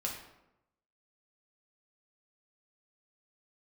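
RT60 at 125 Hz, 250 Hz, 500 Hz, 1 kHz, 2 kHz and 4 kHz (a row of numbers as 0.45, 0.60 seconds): 1.0, 0.95, 0.95, 0.85, 0.70, 0.55 seconds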